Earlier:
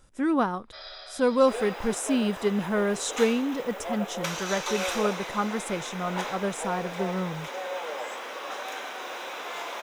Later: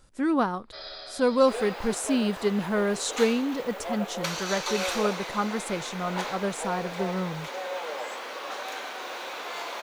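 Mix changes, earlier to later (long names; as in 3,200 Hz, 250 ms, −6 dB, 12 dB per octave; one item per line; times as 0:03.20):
first sound: remove high-pass filter 640 Hz 12 dB per octave
master: remove notch filter 4,400 Hz, Q 6.1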